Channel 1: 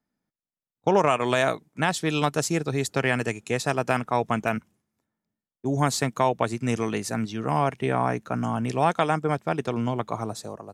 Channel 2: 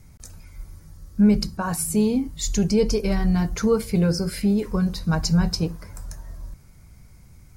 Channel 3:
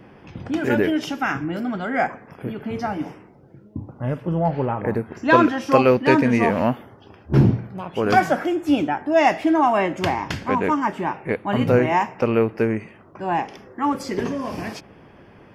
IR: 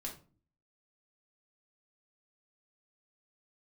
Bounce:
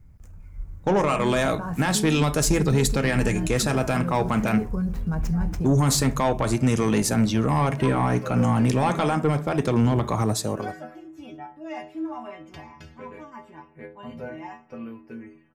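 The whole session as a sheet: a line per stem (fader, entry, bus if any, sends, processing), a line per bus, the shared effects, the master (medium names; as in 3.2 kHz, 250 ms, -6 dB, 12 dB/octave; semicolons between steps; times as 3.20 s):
+1.0 dB, 0.00 s, bus A, send -5.5 dB, treble shelf 10 kHz +8 dB; band-stop 700 Hz, Q 12
-8.5 dB, 0.00 s, bus A, no send, median filter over 9 samples; peak limiter -20 dBFS, peak gain reduction 11 dB; peaking EQ 3.6 kHz -9 dB 0.7 oct
-8.5 dB, 2.50 s, no bus, no send, inharmonic resonator 75 Hz, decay 0.55 s, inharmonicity 0.008
bus A: 0.0 dB, level rider gain up to 7.5 dB; peak limiter -12.5 dBFS, peak gain reduction 10.5 dB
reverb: on, RT60 0.40 s, pre-delay 4 ms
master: bass shelf 150 Hz +8.5 dB; saturation -12.5 dBFS, distortion -16 dB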